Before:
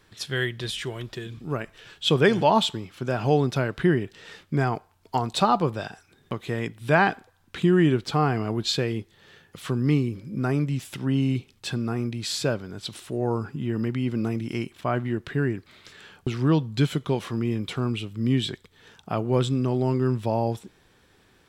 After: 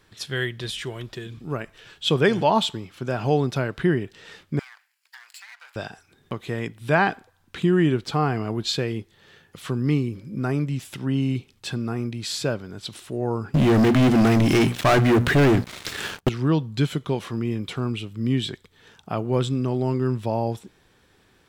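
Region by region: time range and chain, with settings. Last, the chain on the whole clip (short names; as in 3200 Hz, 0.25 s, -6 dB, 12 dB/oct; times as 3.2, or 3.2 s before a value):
4.59–5.76 minimum comb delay 0.41 ms + HPF 1300 Hz 24 dB/oct + compressor 5:1, threshold -42 dBFS
13.54–16.29 notches 60/120/180/240 Hz + sample leveller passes 5
whole clip: dry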